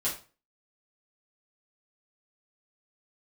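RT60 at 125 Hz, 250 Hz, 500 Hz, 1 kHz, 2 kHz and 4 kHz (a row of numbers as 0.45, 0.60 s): 0.45, 0.35, 0.35, 0.35, 0.30, 0.30 s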